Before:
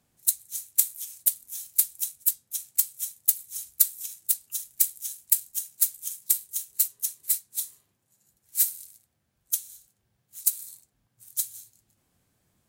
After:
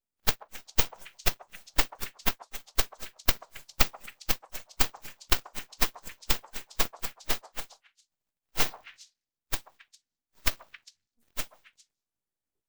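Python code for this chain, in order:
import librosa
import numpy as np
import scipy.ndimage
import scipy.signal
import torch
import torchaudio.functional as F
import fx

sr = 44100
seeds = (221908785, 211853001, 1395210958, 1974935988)

y = fx.noise_reduce_blind(x, sr, reduce_db=20)
y = np.abs(y)
y = fx.echo_stepped(y, sr, ms=135, hz=800.0, octaves=1.4, feedback_pct=70, wet_db=-11)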